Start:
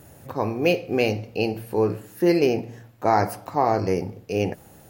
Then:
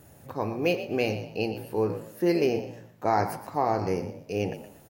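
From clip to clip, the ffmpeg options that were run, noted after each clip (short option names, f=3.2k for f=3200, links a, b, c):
-filter_complex "[0:a]asplit=4[a][b][c][d];[b]adelay=119,afreqshift=53,volume=-12dB[e];[c]adelay=238,afreqshift=106,volume=-22.5dB[f];[d]adelay=357,afreqshift=159,volume=-32.9dB[g];[a][e][f][g]amix=inputs=4:normalize=0,volume=-5dB"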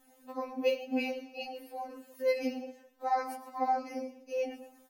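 -af "afftfilt=real='re*3.46*eq(mod(b,12),0)':imag='im*3.46*eq(mod(b,12),0)':win_size=2048:overlap=0.75,volume=-5dB"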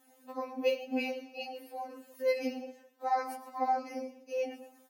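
-af "highpass=f=170:p=1"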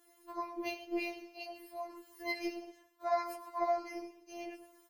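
-af "afftfilt=real='hypot(re,im)*cos(PI*b)':imag='0':win_size=512:overlap=0.75,volume=3dB"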